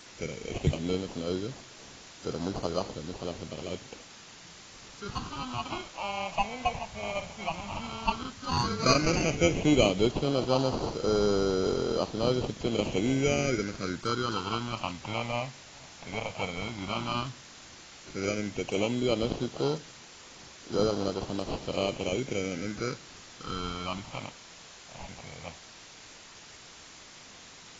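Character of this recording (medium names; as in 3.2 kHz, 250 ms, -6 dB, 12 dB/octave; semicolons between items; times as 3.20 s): aliases and images of a low sample rate 1.8 kHz, jitter 0%; phasing stages 6, 0.11 Hz, lowest notch 360–2300 Hz; a quantiser's noise floor 8-bit, dither triangular; AAC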